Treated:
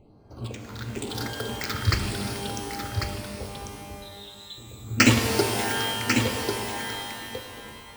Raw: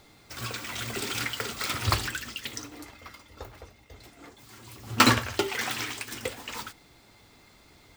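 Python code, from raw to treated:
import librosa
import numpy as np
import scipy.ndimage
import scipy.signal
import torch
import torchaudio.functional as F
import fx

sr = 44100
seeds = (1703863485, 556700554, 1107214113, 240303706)

p1 = fx.wiener(x, sr, points=25)
p2 = fx.phaser_stages(p1, sr, stages=6, low_hz=720.0, high_hz=2600.0, hz=0.98, feedback_pct=25)
p3 = p2 + fx.echo_single(p2, sr, ms=1095, db=-6.0, dry=0)
p4 = fx.freq_invert(p3, sr, carrier_hz=4000, at=(4.02, 4.58))
p5 = fx.rev_shimmer(p4, sr, seeds[0], rt60_s=2.2, semitones=12, shimmer_db=-2, drr_db=5.5)
y = p5 * 10.0 ** (4.0 / 20.0)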